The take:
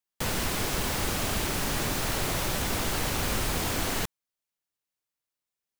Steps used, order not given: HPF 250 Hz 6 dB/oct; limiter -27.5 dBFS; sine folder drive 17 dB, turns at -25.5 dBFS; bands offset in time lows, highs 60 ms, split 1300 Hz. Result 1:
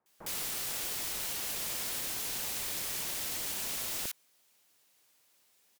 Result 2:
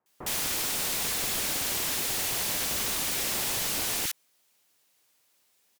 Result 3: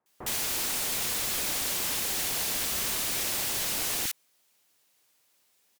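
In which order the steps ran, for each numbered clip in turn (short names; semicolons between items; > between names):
HPF > sine folder > limiter > bands offset in time; limiter > HPF > sine folder > bands offset in time; HPF > limiter > sine folder > bands offset in time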